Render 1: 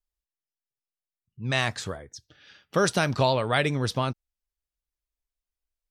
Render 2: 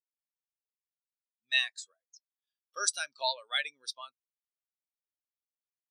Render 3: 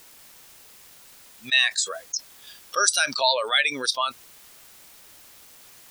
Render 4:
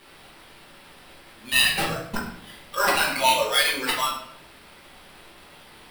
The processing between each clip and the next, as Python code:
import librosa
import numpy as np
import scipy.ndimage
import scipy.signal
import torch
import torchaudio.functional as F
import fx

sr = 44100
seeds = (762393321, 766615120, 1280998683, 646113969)

y1 = scipy.signal.sosfilt(scipy.signal.bessel(2, 180.0, 'highpass', norm='mag', fs=sr, output='sos'), x)
y1 = np.diff(y1, prepend=0.0)
y1 = fx.spectral_expand(y1, sr, expansion=2.5)
y1 = y1 * 10.0 ** (4.0 / 20.0)
y2 = fx.env_flatten(y1, sr, amount_pct=70)
y2 = y2 * 10.0 ** (6.5 / 20.0)
y3 = fx.sample_hold(y2, sr, seeds[0], rate_hz=6700.0, jitter_pct=0)
y3 = y3 + 10.0 ** (-15.5 / 20.0) * np.pad(y3, (int(100 * sr / 1000.0), 0))[:len(y3)]
y3 = fx.room_shoebox(y3, sr, seeds[1], volume_m3=110.0, walls='mixed', distance_m=1.2)
y3 = y3 * 10.0 ** (-4.0 / 20.0)